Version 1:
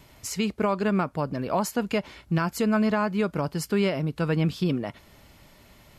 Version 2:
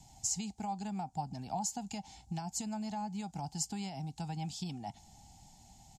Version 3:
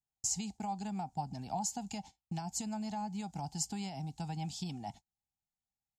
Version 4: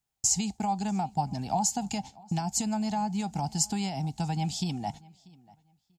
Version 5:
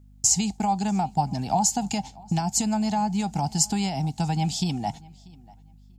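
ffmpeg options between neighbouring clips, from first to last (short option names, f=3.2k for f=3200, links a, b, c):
-filter_complex "[0:a]acrossover=split=340|730[a][b][c];[a]acompressor=threshold=-36dB:ratio=4[d];[b]acompressor=threshold=-41dB:ratio=4[e];[c]acompressor=threshold=-33dB:ratio=4[f];[d][e][f]amix=inputs=3:normalize=0,firequalizer=gain_entry='entry(200,0);entry(380,-14);entry(550,-22);entry(780,12);entry(1100,-21);entry(3300,-6);entry(7100,11);entry(11000,-9)':delay=0.05:min_phase=1,volume=-4dB"
-af "agate=range=-42dB:threshold=-48dB:ratio=16:detection=peak"
-filter_complex "[0:a]asplit=2[a][b];[b]adelay=639,lowpass=f=4.4k:p=1,volume=-23.5dB,asplit=2[c][d];[d]adelay=639,lowpass=f=4.4k:p=1,volume=0.22[e];[a][c][e]amix=inputs=3:normalize=0,volume=9dB"
-af "aeval=exprs='val(0)+0.00178*(sin(2*PI*50*n/s)+sin(2*PI*2*50*n/s)/2+sin(2*PI*3*50*n/s)/3+sin(2*PI*4*50*n/s)/4+sin(2*PI*5*50*n/s)/5)':c=same,volume=5dB"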